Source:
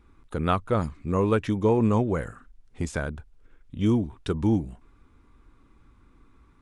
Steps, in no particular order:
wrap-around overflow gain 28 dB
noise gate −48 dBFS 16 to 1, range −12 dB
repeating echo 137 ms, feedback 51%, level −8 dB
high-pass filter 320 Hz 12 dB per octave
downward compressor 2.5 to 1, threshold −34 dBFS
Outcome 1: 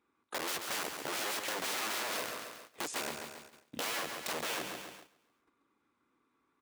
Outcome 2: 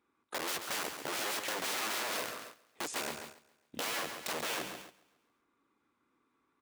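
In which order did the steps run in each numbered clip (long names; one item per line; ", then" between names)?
wrap-around overflow, then repeating echo, then noise gate, then high-pass filter, then downward compressor
wrap-around overflow, then high-pass filter, then downward compressor, then repeating echo, then noise gate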